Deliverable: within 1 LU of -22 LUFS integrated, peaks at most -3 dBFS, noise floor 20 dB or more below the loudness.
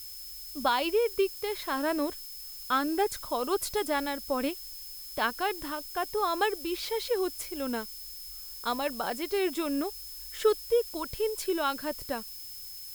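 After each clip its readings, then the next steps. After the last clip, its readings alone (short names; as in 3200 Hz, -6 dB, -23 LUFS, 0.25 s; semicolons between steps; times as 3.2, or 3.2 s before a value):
steady tone 5200 Hz; tone level -46 dBFS; noise floor -43 dBFS; noise floor target -51 dBFS; loudness -31.0 LUFS; peak -13.0 dBFS; loudness target -22.0 LUFS
-> notch 5200 Hz, Q 30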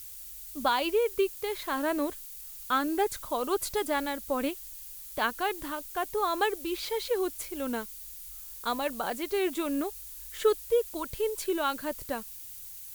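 steady tone none; noise floor -44 dBFS; noise floor target -51 dBFS
-> denoiser 7 dB, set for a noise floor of -44 dBFS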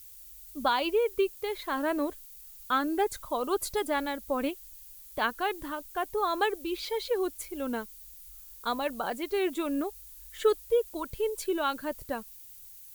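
noise floor -49 dBFS; noise floor target -51 dBFS
-> denoiser 6 dB, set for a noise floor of -49 dBFS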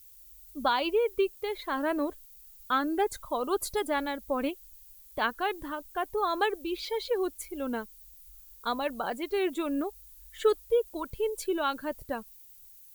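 noise floor -53 dBFS; loudness -31.0 LUFS; peak -13.5 dBFS; loudness target -22.0 LUFS
-> gain +9 dB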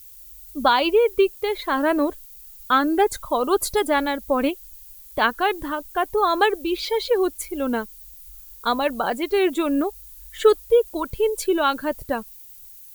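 loudness -22.0 LUFS; peak -4.5 dBFS; noise floor -44 dBFS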